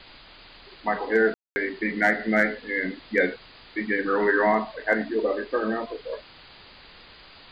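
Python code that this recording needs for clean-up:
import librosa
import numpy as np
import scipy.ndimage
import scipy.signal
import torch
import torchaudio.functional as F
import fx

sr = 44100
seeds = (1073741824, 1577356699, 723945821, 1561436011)

y = fx.fix_declip(x, sr, threshold_db=-9.5)
y = fx.fix_ambience(y, sr, seeds[0], print_start_s=6.21, print_end_s=6.71, start_s=1.34, end_s=1.56)
y = fx.noise_reduce(y, sr, print_start_s=6.21, print_end_s=6.71, reduce_db=20.0)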